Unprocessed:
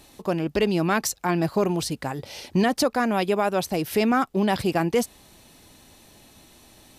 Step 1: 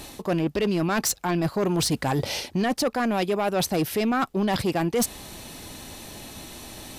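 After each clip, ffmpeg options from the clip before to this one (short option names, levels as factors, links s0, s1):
-af "areverse,acompressor=threshold=0.0316:ratio=10,areverse,aeval=exprs='0.0841*sin(PI/2*1.58*val(0)/0.0841)':c=same,volume=1.5"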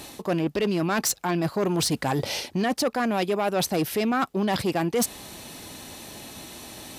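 -af "highpass=f=110:p=1"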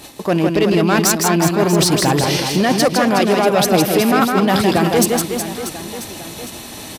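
-filter_complex "[0:a]agate=range=0.398:threshold=0.00891:ratio=16:detection=peak,asplit=2[s0][s1];[s1]aecho=0:1:160|368|638.4|989.9|1447:0.631|0.398|0.251|0.158|0.1[s2];[s0][s2]amix=inputs=2:normalize=0,volume=2.66"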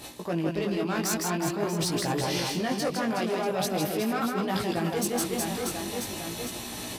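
-af "flanger=delay=16.5:depth=5.8:speed=0.45,areverse,acompressor=threshold=0.0631:ratio=6,areverse,volume=0.841"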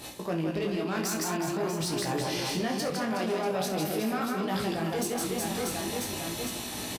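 -filter_complex "[0:a]alimiter=limit=0.075:level=0:latency=1:release=54,asplit=2[s0][s1];[s1]aecho=0:1:32|66:0.376|0.251[s2];[s0][s2]amix=inputs=2:normalize=0"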